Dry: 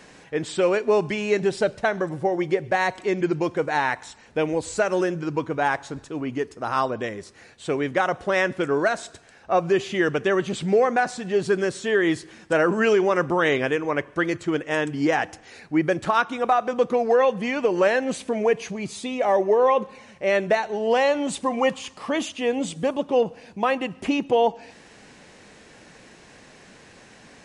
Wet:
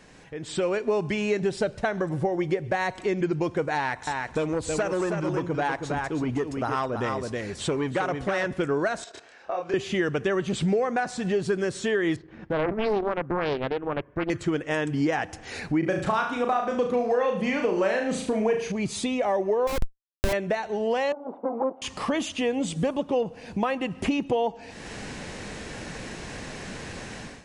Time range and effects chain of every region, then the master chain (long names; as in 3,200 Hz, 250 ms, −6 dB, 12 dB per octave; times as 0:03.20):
0:03.75–0:08.54: single-tap delay 320 ms −7 dB + saturating transformer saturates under 1,000 Hz
0:09.04–0:09.74: three-way crossover with the lows and the highs turned down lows −23 dB, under 300 Hz, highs −16 dB, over 6,800 Hz + output level in coarse steps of 16 dB + double-tracking delay 28 ms −2 dB
0:12.16–0:14.30: transient designer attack −6 dB, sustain −10 dB + head-to-tape spacing loss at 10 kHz 39 dB + highs frequency-modulated by the lows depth 0.7 ms
0:15.79–0:18.72: flutter between parallel walls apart 6.3 metres, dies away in 0.45 s + one half of a high-frequency compander decoder only
0:19.67–0:20.33: high-pass filter 91 Hz 6 dB per octave + comparator with hysteresis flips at −22 dBFS
0:21.12–0:21.82: lower of the sound and its delayed copy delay 1.4 ms + Chebyshev band-pass filter 260–1,000 Hz, order 3
whole clip: downward compressor 2.5 to 1, threshold −41 dBFS; low-shelf EQ 120 Hz +10.5 dB; automatic gain control gain up to 16 dB; level −6 dB